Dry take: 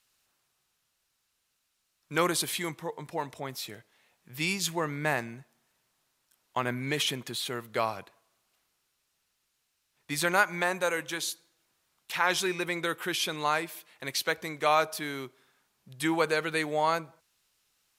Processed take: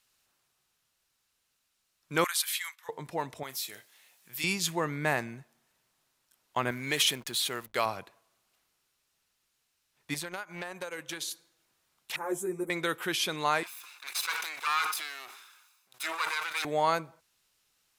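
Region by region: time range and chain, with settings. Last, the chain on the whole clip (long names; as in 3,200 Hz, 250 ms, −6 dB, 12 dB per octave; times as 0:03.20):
0:02.24–0:02.89: noise gate −45 dBFS, range −8 dB + high-pass filter 1,300 Hz 24 dB per octave + parametric band 13,000 Hz +6 dB 0.23 octaves
0:03.43–0:04.44: spectral tilt +3.5 dB per octave + downward compressor 1.5 to 1, threshold −43 dBFS + double-tracking delay 30 ms −13 dB
0:06.71–0:07.86: spectral tilt +2 dB per octave + slack as between gear wheels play −45 dBFS
0:10.14–0:11.31: transient designer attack +7 dB, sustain −7 dB + downward compressor 20 to 1, threshold −31 dBFS + saturating transformer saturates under 1,700 Hz
0:12.16–0:12.70: drawn EQ curve 250 Hz 0 dB, 360 Hz +5 dB, 2,000 Hz −18 dB, 3,000 Hz −29 dB, 4,700 Hz −30 dB, 7,500 Hz +1 dB + string-ensemble chorus
0:13.63–0:16.65: lower of the sound and its delayed copy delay 0.8 ms + high-pass filter 1,100 Hz + level that may fall only so fast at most 43 dB per second
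whole clip: no processing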